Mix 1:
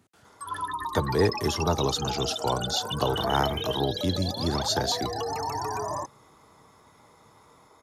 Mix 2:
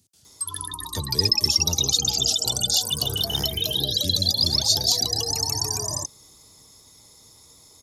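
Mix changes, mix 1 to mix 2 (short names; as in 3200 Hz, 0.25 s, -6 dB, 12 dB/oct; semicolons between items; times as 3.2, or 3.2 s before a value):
background +8.0 dB; master: add EQ curve 100 Hz 0 dB, 1400 Hz -19 dB, 4900 Hz +9 dB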